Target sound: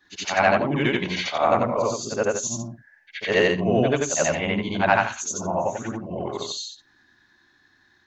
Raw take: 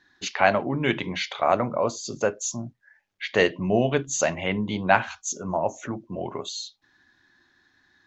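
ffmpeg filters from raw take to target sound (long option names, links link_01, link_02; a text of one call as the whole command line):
ffmpeg -i in.wav -af "afftfilt=real='re':imag='-im':win_size=8192:overlap=0.75,acontrast=76" out.wav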